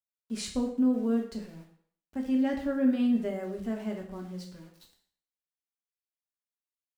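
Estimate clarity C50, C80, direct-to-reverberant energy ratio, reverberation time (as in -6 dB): 7.0 dB, 10.5 dB, 0.5 dB, 0.55 s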